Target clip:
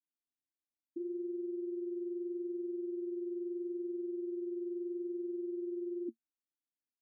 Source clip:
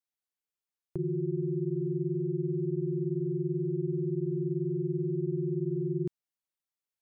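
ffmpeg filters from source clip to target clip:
-af "asuperpass=centerf=280:order=12:qfactor=2.4,volume=3dB"

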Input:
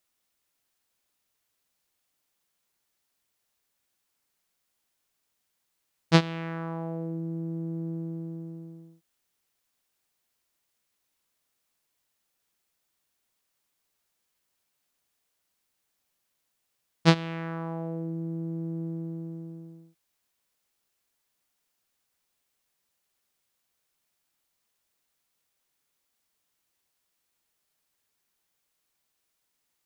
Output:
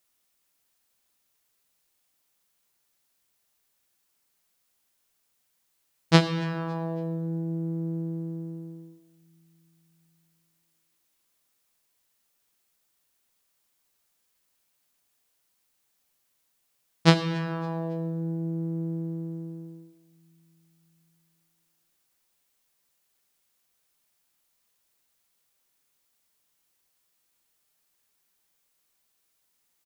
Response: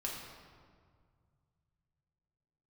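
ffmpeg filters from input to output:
-filter_complex "[0:a]aecho=1:1:278|556|834:0.075|0.0292|0.0114,asplit=2[a][b];[1:a]atrim=start_sample=2205,highshelf=f=4.7k:g=12[c];[b][c]afir=irnorm=-1:irlink=0,volume=-9.5dB[d];[a][d]amix=inputs=2:normalize=0"

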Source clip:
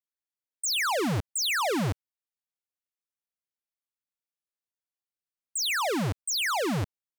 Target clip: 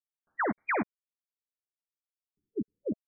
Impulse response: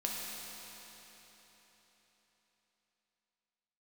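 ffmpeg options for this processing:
-filter_complex "[0:a]highshelf=f=6.6k:g=-7,aecho=1:1:891|1782:0.0891|0.016,aeval=exprs='val(0)*gte(abs(val(0)),0.00531)':c=same,equalizer=f=210:w=1.5:g=-2,asplit=2[a][b];[b]adelay=23,volume=-12.5dB[c];[a][c]amix=inputs=2:normalize=0,asetrate=103194,aresample=44100,afftfilt=real='re*lt(b*sr/1024,430*pow(2500/430,0.5+0.5*sin(2*PI*0.31*pts/sr)))':imag='im*lt(b*sr/1024,430*pow(2500/430,0.5+0.5*sin(2*PI*0.31*pts/sr)))':win_size=1024:overlap=0.75"

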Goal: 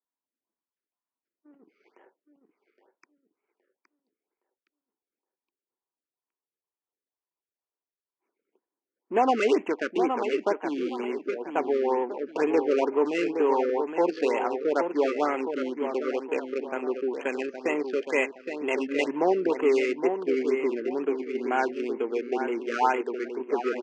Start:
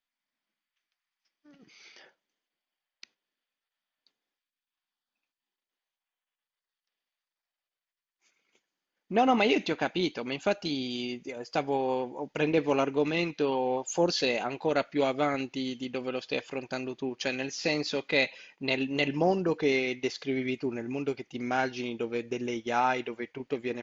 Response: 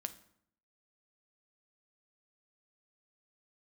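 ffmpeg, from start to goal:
-filter_complex "[0:a]acrossover=split=2800[a][b];[b]acompressor=threshold=-42dB:ratio=4:attack=1:release=60[c];[a][c]amix=inputs=2:normalize=0,highshelf=f=4.3k:g=5,asplit=2[d][e];[e]asoftclip=type=hard:threshold=-29.5dB,volume=-7dB[f];[d][f]amix=inputs=2:normalize=0,adynamicsmooth=sensitivity=4.5:basefreq=660,highpass=f=270:w=0.5412,highpass=f=270:w=1.3066,equalizer=f=400:t=q:w=4:g=5,equalizer=f=600:t=q:w=4:g=-3,equalizer=f=990:t=q:w=4:g=8,equalizer=f=3.7k:t=q:w=4:g=-8,lowpass=f=6.5k:w=0.5412,lowpass=f=6.5k:w=1.3066,asplit=2[g][h];[h]adelay=817,lowpass=f=4.3k:p=1,volume=-7dB,asplit=2[i][j];[j]adelay=817,lowpass=f=4.3k:p=1,volume=0.35,asplit=2[k][l];[l]adelay=817,lowpass=f=4.3k:p=1,volume=0.35,asplit=2[m][n];[n]adelay=817,lowpass=f=4.3k:p=1,volume=0.35[o];[g][i][k][m][o]amix=inputs=5:normalize=0,afftfilt=real='re*(1-between(b*sr/1024,800*pow(4800/800,0.5+0.5*sin(2*PI*2.1*pts/sr))/1.41,800*pow(4800/800,0.5+0.5*sin(2*PI*2.1*pts/sr))*1.41))':imag='im*(1-between(b*sr/1024,800*pow(4800/800,0.5+0.5*sin(2*PI*2.1*pts/sr))/1.41,800*pow(4800/800,0.5+0.5*sin(2*PI*2.1*pts/sr))*1.41))':win_size=1024:overlap=0.75"

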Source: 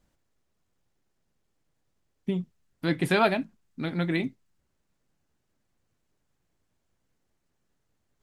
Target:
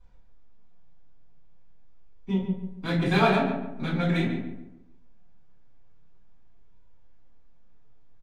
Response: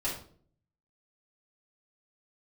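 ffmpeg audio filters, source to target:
-filter_complex "[0:a]lowpass=9.4k,equalizer=f=360:w=3.6:g=-6,asplit=2[a][b];[b]alimiter=level_in=6dB:limit=-24dB:level=0:latency=1:release=277,volume=-6dB,volume=1dB[c];[a][c]amix=inputs=2:normalize=0,adynamicsmooth=sensitivity=7.5:basefreq=4.5k,flanger=delay=2:depth=5.2:regen=52:speed=0.44:shape=sinusoidal,asplit=2[d][e];[e]adelay=141,lowpass=f=1.8k:p=1,volume=-6dB,asplit=2[f][g];[g]adelay=141,lowpass=f=1.8k:p=1,volume=0.38,asplit=2[h][i];[i]adelay=141,lowpass=f=1.8k:p=1,volume=0.38,asplit=2[j][k];[k]adelay=141,lowpass=f=1.8k:p=1,volume=0.38,asplit=2[l][m];[m]adelay=141,lowpass=f=1.8k:p=1,volume=0.38[n];[d][f][h][j][l][n]amix=inputs=6:normalize=0[o];[1:a]atrim=start_sample=2205,asetrate=57330,aresample=44100[p];[o][p]afir=irnorm=-1:irlink=0,volume=1dB"

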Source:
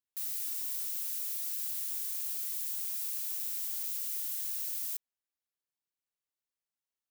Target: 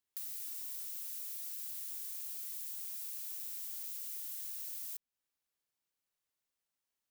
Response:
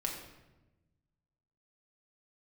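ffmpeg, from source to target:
-filter_complex "[0:a]acrossover=split=320[a][b];[b]acompressor=threshold=-47dB:ratio=3[c];[a][c]amix=inputs=2:normalize=0,volume=3.5dB"

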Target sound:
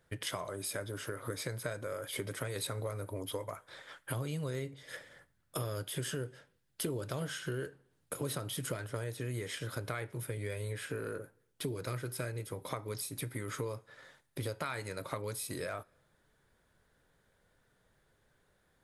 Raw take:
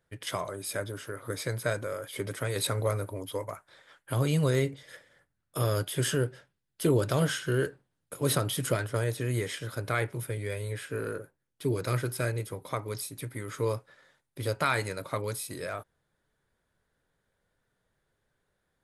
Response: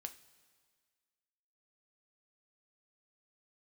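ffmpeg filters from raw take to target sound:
-filter_complex "[0:a]acompressor=threshold=-42dB:ratio=5,asplit=2[a][b];[1:a]atrim=start_sample=2205,afade=t=out:st=0.28:d=0.01,atrim=end_sample=12789,asetrate=30429,aresample=44100[c];[b][c]afir=irnorm=-1:irlink=0,volume=-11dB[d];[a][d]amix=inputs=2:normalize=0,volume=4dB"

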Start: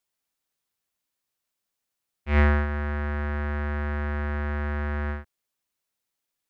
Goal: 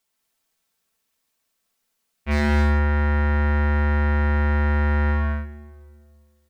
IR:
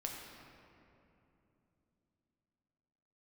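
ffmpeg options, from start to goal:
-filter_complex "[0:a]aecho=1:1:4.5:0.46,acompressor=threshold=-24dB:ratio=3,aeval=exprs='0.0944*(abs(mod(val(0)/0.0944+3,4)-2)-1)':c=same,aecho=1:1:75.8|131.2|215.7:0.355|0.501|0.631,asplit=2[a][b];[1:a]atrim=start_sample=2205,asetrate=79380,aresample=44100[c];[b][c]afir=irnorm=-1:irlink=0,volume=-4dB[d];[a][d]amix=inputs=2:normalize=0,volume=3.5dB"

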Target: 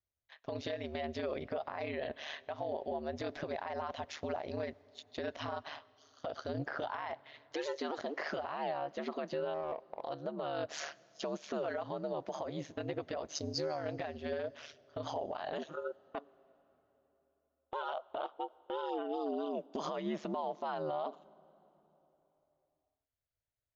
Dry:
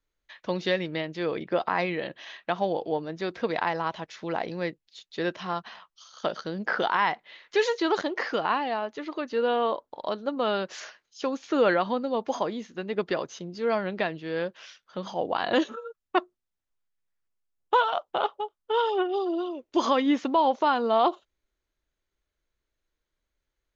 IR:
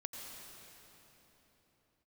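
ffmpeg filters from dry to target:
-filter_complex "[0:a]agate=range=-14dB:threshold=-45dB:ratio=16:detection=peak,aeval=exprs='val(0)*sin(2*PI*74*n/s)':c=same,equalizer=f=650:t=o:w=0.5:g=9,acompressor=threshold=-32dB:ratio=10,alimiter=level_in=5.5dB:limit=-24dB:level=0:latency=1:release=48,volume=-5.5dB,asettb=1/sr,asplit=3[a][b][c];[a]atrim=end=9.544[d];[b]atrim=start=9.54:end=10.02,asetpts=PTS-STARTPTS,afade=t=in:d=0.004:c=qsin,afade=t=out:st=0.476:d=0.004:c=qsin,adynamicsmooth=sensitivity=3.5:basefreq=870[e];[c]atrim=start=10.016[f];[d][e]acrossfade=d=0.004:c1=hsin:c2=qsin[g];[g][f]acrossfade=d=0.004:c1=qsin:c2=hsin,asettb=1/sr,asplit=3[h][i][j];[h]atrim=end=13.354[k];[i]atrim=start=13.35:end=13.77,asetpts=PTS-STARTPTS,afade=t=in:d=0.004:c=qsin,afade=t=out:st=0.416:d=0.004:c=qsin,highshelf=f=3.9k:t=q:w=3:g=6.5[l];[j]atrim=start=13.766[m];[k][l]acrossfade=d=0.004:c1=hsin:c2=qsin[n];[n][m]acrossfade=d=0.004:c1=qsin:c2=hsin,asplit=2[o][p];[1:a]atrim=start_sample=2205[q];[p][q]afir=irnorm=-1:irlink=0,volume=-18.5dB[r];[o][r]amix=inputs=2:normalize=0,volume=1dB"

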